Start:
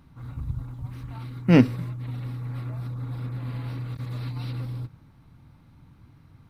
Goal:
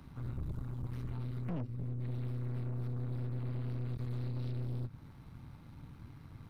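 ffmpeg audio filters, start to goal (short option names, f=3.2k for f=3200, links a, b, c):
-filter_complex "[0:a]acrossover=split=120|330[a][b][c];[a]acompressor=threshold=-37dB:ratio=4[d];[b]acompressor=threshold=-46dB:ratio=4[e];[c]acompressor=threshold=-58dB:ratio=4[f];[d][e][f]amix=inputs=3:normalize=0,aeval=exprs='(tanh(100*val(0)+0.7)-tanh(0.7))/100':c=same,volume=5dB"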